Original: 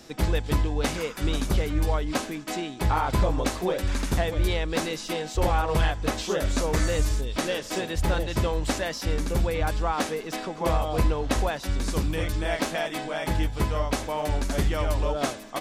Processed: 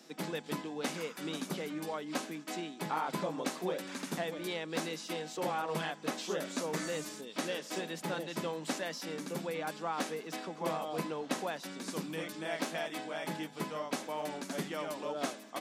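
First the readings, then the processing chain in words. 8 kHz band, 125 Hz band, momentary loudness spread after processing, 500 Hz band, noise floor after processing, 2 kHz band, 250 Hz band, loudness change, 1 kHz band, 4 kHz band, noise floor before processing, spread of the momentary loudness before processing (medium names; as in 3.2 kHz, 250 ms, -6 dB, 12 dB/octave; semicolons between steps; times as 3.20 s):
-8.0 dB, -19.0 dB, 4 LU, -9.0 dB, -50 dBFS, -8.0 dB, -8.5 dB, -10.5 dB, -8.5 dB, -8.0 dB, -38 dBFS, 5 LU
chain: Chebyshev high-pass 160 Hz, order 5; trim -8 dB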